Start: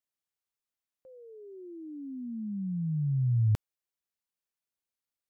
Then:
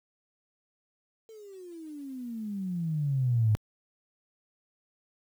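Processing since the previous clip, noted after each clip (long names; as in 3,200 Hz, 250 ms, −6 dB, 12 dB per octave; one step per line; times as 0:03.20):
harmonic generator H 3 −45 dB, 4 −44 dB, 8 −43 dB, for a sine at −19.5 dBFS
noise gate with hold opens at −46 dBFS
bit-depth reduction 10 bits, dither none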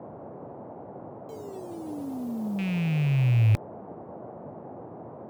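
loose part that buzzes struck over −36 dBFS, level −33 dBFS
noise in a band 100–780 Hz −47 dBFS
level +5 dB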